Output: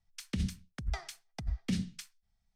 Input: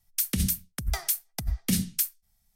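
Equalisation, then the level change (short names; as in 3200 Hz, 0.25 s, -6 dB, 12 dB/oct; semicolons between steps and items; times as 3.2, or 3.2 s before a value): air absorption 130 m; -5.5 dB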